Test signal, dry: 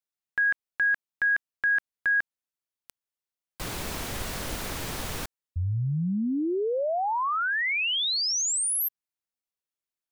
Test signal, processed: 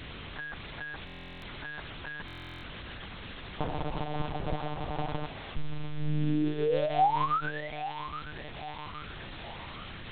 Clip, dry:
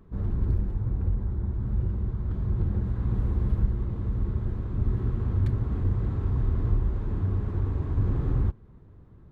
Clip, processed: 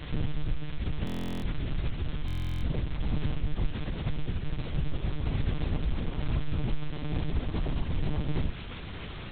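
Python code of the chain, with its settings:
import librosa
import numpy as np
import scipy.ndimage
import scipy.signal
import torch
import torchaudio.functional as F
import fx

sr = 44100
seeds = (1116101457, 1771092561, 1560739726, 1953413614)

p1 = scipy.signal.sosfilt(scipy.signal.butter(4, 1100.0, 'lowpass', fs=sr, output='sos'), x)
p2 = fx.dereverb_blind(p1, sr, rt60_s=1.5)
p3 = fx.peak_eq(p2, sr, hz=120.0, db=7.5, octaves=0.29)
p4 = p3 + 0.71 * np.pad(p3, (int(4.0 * sr / 1000.0), 0))[:len(p3)]
p5 = fx.dynamic_eq(p4, sr, hz=790.0, q=4.9, threshold_db=-58.0, ratio=4.0, max_db=7)
p6 = fx.over_compress(p5, sr, threshold_db=-28.0, ratio=-0.5)
p7 = p5 + (p6 * librosa.db_to_amplitude(-2.0))
p8 = fx.quant_dither(p7, sr, seeds[0], bits=6, dither='triangular')
p9 = fx.add_hum(p8, sr, base_hz=50, snr_db=12)
p10 = p9 + fx.echo_thinned(p9, sr, ms=821, feedback_pct=55, hz=500.0, wet_db=-11.5, dry=0)
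p11 = fx.lpc_monotone(p10, sr, seeds[1], pitch_hz=150.0, order=8)
p12 = fx.buffer_glitch(p11, sr, at_s=(1.05, 2.26), block=1024, repeats=15)
y = p12 * librosa.db_to_amplitude(-4.5)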